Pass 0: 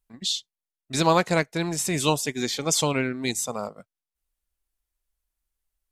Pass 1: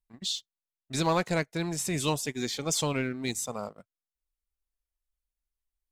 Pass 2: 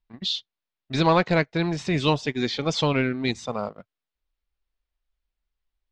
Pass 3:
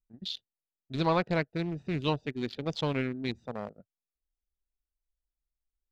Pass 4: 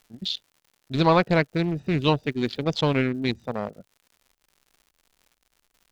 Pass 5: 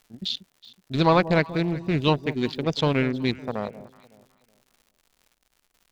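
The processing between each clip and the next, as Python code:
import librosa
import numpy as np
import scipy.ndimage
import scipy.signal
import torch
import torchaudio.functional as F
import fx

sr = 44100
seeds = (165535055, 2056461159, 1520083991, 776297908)

y1 = fx.low_shelf(x, sr, hz=120.0, db=6.0)
y1 = fx.leveller(y1, sr, passes=1)
y1 = y1 * librosa.db_to_amplitude(-9.0)
y2 = scipy.signal.sosfilt(scipy.signal.butter(4, 4400.0, 'lowpass', fs=sr, output='sos'), y1)
y2 = y2 * librosa.db_to_amplitude(7.0)
y3 = fx.wiener(y2, sr, points=41)
y3 = y3 * librosa.db_to_amplitude(-7.0)
y4 = fx.dmg_crackle(y3, sr, seeds[0], per_s=140.0, level_db=-54.0)
y4 = y4 * librosa.db_to_amplitude(8.0)
y5 = fx.echo_alternate(y4, sr, ms=186, hz=850.0, feedback_pct=52, wet_db=-14.0)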